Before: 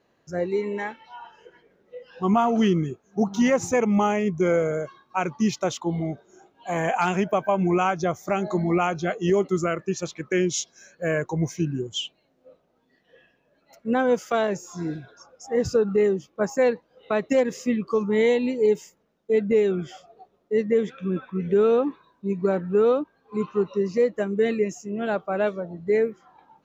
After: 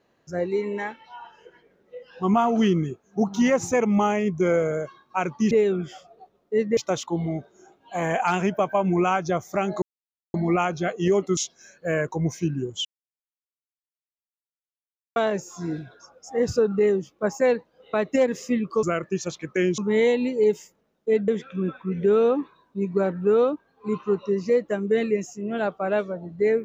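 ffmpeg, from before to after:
ffmpeg -i in.wav -filter_complex "[0:a]asplit=10[link_01][link_02][link_03][link_04][link_05][link_06][link_07][link_08][link_09][link_10];[link_01]atrim=end=5.512[link_11];[link_02]atrim=start=19.498:end=20.762[link_12];[link_03]atrim=start=5.508:end=8.56,asetpts=PTS-STARTPTS,afade=type=out:start_time=3.048:duration=0.004:curve=hsin,apad=pad_dur=0.52[link_13];[link_04]atrim=start=8.56:end=9.592,asetpts=PTS-STARTPTS,afade=type=in:duration=0.004:curve=hsin[link_14];[link_05]atrim=start=10.538:end=12.02,asetpts=PTS-STARTPTS,afade=type=out:start_time=1.478:duration=0.004:curve=hsin[link_15];[link_06]atrim=start=12.02:end=14.33,asetpts=PTS-STARTPTS,volume=0[link_16];[link_07]atrim=start=14.33:end=18.002,asetpts=PTS-STARTPTS,afade=type=in:duration=0.004:curve=hsin[link_17];[link_08]atrim=start=9.588:end=10.542[link_18];[link_09]atrim=start=17.998:end=19.502[link_19];[link_10]atrim=start=20.758[link_20];[link_11][link_12]acrossfade=duration=0.004:curve1=hsin:curve2=hsin[link_21];[link_13][link_14]concat=n=2:v=0:a=1[link_22];[link_21][link_22]acrossfade=duration=0.004:curve1=hsin:curve2=hsin[link_23];[link_15][link_16][link_17]concat=n=3:v=0:a=1[link_24];[link_23][link_24]acrossfade=duration=0.004:curve1=hsin:curve2=hsin[link_25];[link_25][link_18]acrossfade=duration=0.004:curve1=hsin:curve2=hsin[link_26];[link_26][link_19]acrossfade=duration=0.004:curve1=hsin:curve2=hsin[link_27];[link_27][link_20]acrossfade=duration=0.004:curve1=hsin:curve2=hsin" out.wav

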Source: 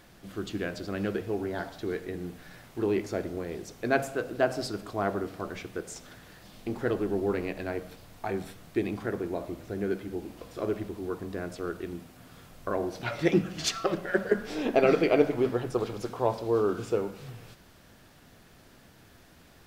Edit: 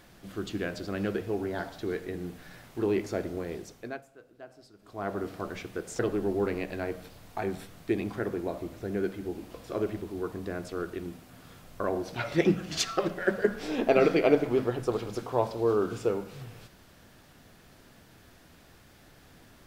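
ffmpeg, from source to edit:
ffmpeg -i in.wav -filter_complex "[0:a]asplit=4[link_01][link_02][link_03][link_04];[link_01]atrim=end=4.01,asetpts=PTS-STARTPTS,afade=type=out:start_time=3.52:duration=0.49:silence=0.0794328[link_05];[link_02]atrim=start=4.01:end=4.79,asetpts=PTS-STARTPTS,volume=-22dB[link_06];[link_03]atrim=start=4.79:end=5.992,asetpts=PTS-STARTPTS,afade=type=in:duration=0.49:silence=0.0794328[link_07];[link_04]atrim=start=6.858[link_08];[link_05][link_06][link_07]concat=n=3:v=0:a=1[link_09];[link_09][link_08]acrossfade=duration=0.004:curve1=hsin:curve2=hsin" out.wav

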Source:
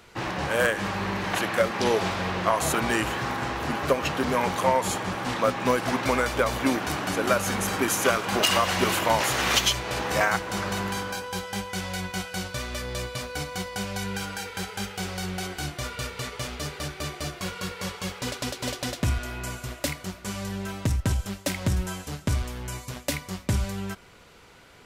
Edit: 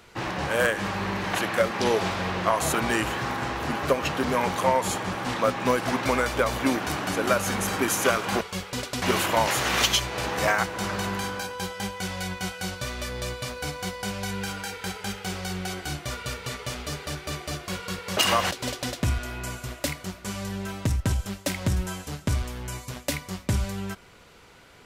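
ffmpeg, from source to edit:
ffmpeg -i in.wav -filter_complex "[0:a]asplit=5[link_01][link_02][link_03][link_04][link_05];[link_01]atrim=end=8.412[link_06];[link_02]atrim=start=17.898:end=18.512[link_07];[link_03]atrim=start=8.748:end=17.902[link_08];[link_04]atrim=start=8.408:end=8.752[link_09];[link_05]atrim=start=18.508[link_10];[link_06][link_07]acrossfade=duration=0.004:curve1=hsin:curve2=hsin[link_11];[link_11][link_08]acrossfade=duration=0.004:curve1=hsin:curve2=hsin[link_12];[link_12][link_09]acrossfade=duration=0.004:curve1=hsin:curve2=hsin[link_13];[link_13][link_10]acrossfade=duration=0.004:curve1=hsin:curve2=hsin" out.wav

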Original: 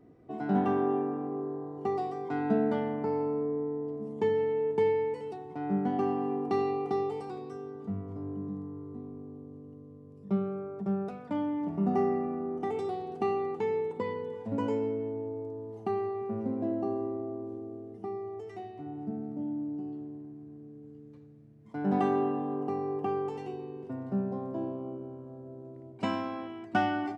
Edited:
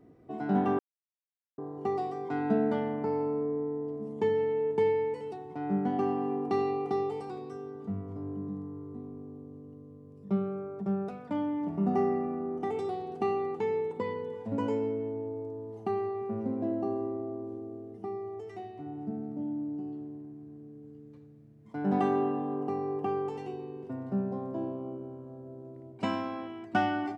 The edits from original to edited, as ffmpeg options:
ffmpeg -i in.wav -filter_complex "[0:a]asplit=3[link_01][link_02][link_03];[link_01]atrim=end=0.79,asetpts=PTS-STARTPTS,afade=type=out:start_time=0.786:duration=0.004:curve=hsin[link_04];[link_02]atrim=start=0.79:end=1.58,asetpts=PTS-STARTPTS,volume=0[link_05];[link_03]atrim=start=1.58,asetpts=PTS-STARTPTS,afade=type=in:duration=0.004:curve=hsin[link_06];[link_04][link_05][link_06]concat=n=3:v=0:a=1" out.wav

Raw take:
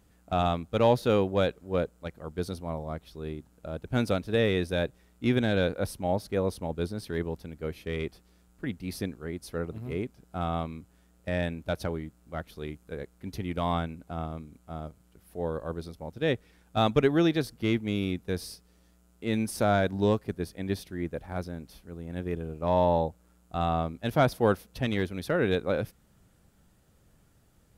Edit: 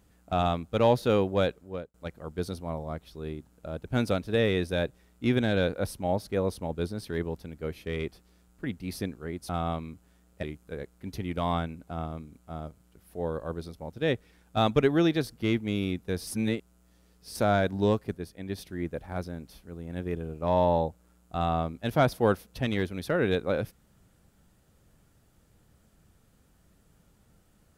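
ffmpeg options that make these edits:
ffmpeg -i in.wav -filter_complex "[0:a]asplit=8[link_01][link_02][link_03][link_04][link_05][link_06][link_07][link_08];[link_01]atrim=end=1.94,asetpts=PTS-STARTPTS,afade=type=out:start_time=1.48:duration=0.46[link_09];[link_02]atrim=start=1.94:end=9.492,asetpts=PTS-STARTPTS,afade=type=in:duration=0.004:curve=hsin[link_10];[link_03]atrim=start=10.358:end=11.302[link_11];[link_04]atrim=start=12.628:end=18.472[link_12];[link_05]atrim=start=18.468:end=19.552,asetpts=PTS-STARTPTS,areverse[link_13];[link_06]atrim=start=19.548:end=20.372[link_14];[link_07]atrim=start=20.368:end=20.782,asetpts=PTS-STARTPTS,volume=-4.5dB[link_15];[link_08]atrim=start=20.778[link_16];[link_09][link_10]concat=n=2:v=0:a=1[link_17];[link_17][link_11]acrossfade=duration=0.004:curve1=hsin:curve2=hsin[link_18];[link_18][link_12]acrossfade=duration=0.004:curve1=hsin:curve2=hsin[link_19];[link_19][link_13]acrossfade=duration=0.004:curve1=hsin:curve2=hsin[link_20];[link_20][link_14]acrossfade=duration=0.004:curve1=hsin:curve2=hsin[link_21];[link_21][link_15]acrossfade=duration=0.004:curve1=hsin:curve2=hsin[link_22];[link_22][link_16]acrossfade=duration=0.004:curve1=hsin:curve2=hsin" out.wav

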